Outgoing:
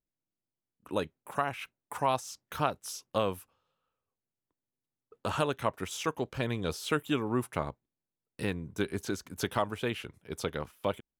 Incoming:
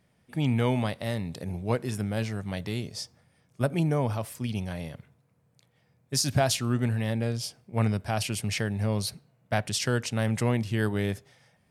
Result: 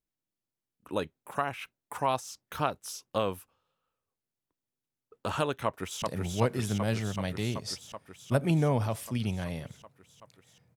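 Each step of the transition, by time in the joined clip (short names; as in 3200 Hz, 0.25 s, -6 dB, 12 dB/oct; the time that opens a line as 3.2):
outgoing
5.65–6.02 echo throw 0.38 s, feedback 80%, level -3 dB
6.02 switch to incoming from 1.31 s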